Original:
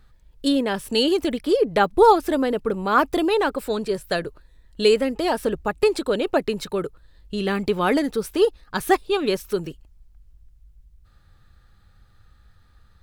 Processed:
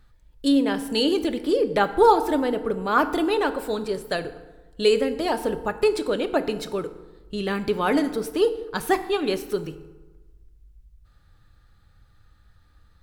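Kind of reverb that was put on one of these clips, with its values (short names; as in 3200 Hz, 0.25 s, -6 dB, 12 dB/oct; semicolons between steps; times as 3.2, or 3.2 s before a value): FDN reverb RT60 1.2 s, low-frequency decay 1.1×, high-frequency decay 0.6×, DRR 9.5 dB; gain -2.5 dB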